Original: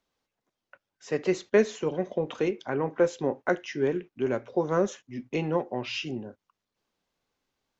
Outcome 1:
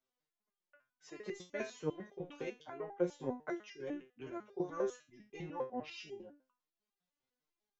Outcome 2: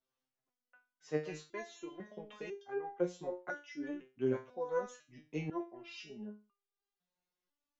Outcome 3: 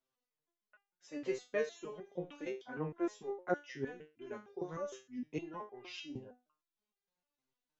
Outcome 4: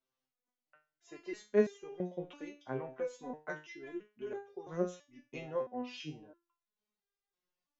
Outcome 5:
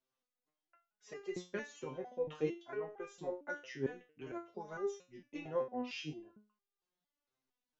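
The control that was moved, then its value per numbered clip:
step-sequenced resonator, speed: 10, 2, 6.5, 3, 4.4 Hertz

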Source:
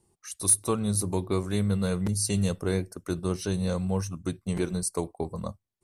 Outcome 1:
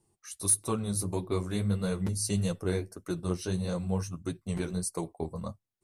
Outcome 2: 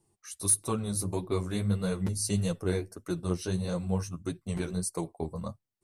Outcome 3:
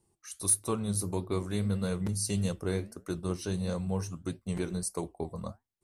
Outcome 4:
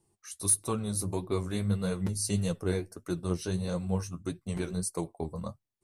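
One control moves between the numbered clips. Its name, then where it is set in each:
flanger, regen: −22, +9, −76, +37%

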